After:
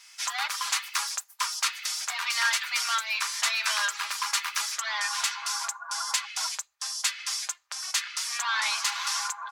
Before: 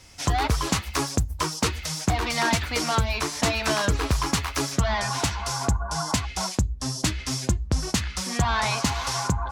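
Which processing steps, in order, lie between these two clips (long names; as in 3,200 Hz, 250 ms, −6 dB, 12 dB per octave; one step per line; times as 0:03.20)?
inverse Chebyshev high-pass filter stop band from 250 Hz, stop band 70 dB
comb filter 5 ms, depth 44%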